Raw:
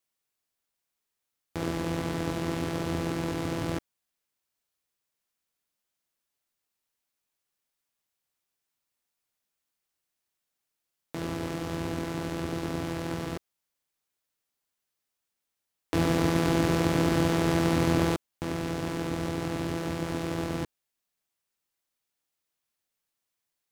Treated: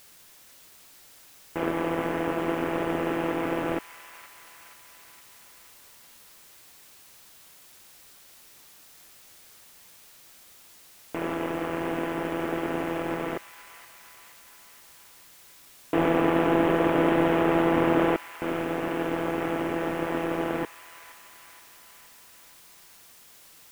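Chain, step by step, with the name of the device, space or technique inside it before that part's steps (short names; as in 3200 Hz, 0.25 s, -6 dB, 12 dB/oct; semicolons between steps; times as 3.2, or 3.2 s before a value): army field radio (BPF 370–2900 Hz; CVSD 16 kbps; white noise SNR 23 dB); thin delay 0.473 s, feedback 61%, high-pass 1500 Hz, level -11 dB; gain +9 dB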